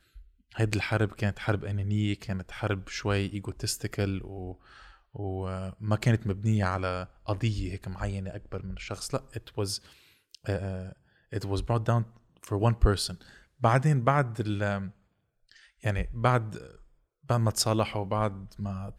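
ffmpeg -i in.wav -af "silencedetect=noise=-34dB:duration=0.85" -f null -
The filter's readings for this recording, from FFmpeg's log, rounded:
silence_start: 14.88
silence_end: 15.85 | silence_duration: 0.97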